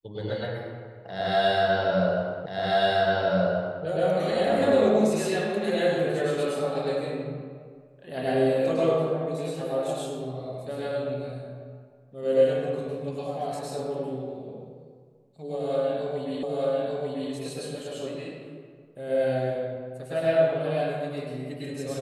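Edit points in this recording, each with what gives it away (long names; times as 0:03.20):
0:02.46: the same again, the last 1.38 s
0:16.43: the same again, the last 0.89 s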